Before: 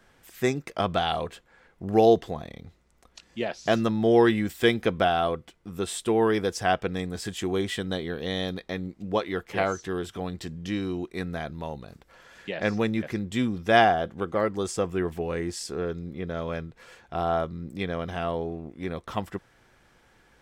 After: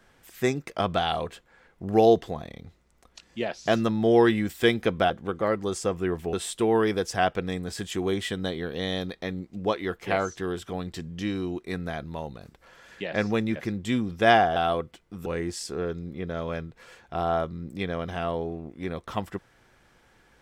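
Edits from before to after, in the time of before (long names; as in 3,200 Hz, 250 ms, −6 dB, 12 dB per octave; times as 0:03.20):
0:05.10–0:05.80: swap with 0:14.03–0:15.26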